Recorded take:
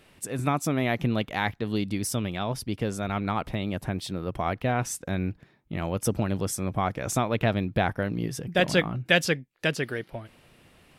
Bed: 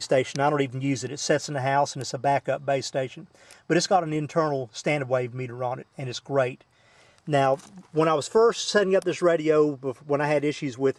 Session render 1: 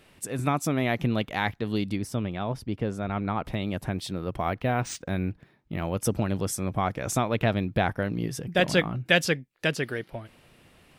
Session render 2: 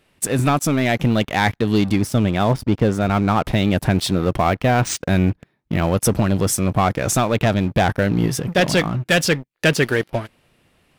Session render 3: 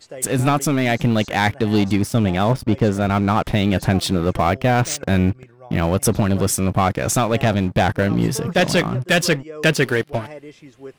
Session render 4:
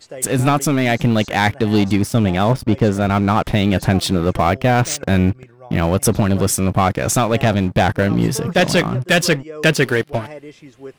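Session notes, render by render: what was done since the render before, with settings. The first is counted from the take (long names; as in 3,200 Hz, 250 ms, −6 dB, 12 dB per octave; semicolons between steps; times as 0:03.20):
0:01.96–0:03.45: parametric band 12,000 Hz −12.5 dB 2.7 octaves; 0:04.36–0:05.95: linearly interpolated sample-rate reduction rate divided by 3×
leveller curve on the samples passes 3; speech leveller within 3 dB 0.5 s
mix in bed −13.5 dB
level +2 dB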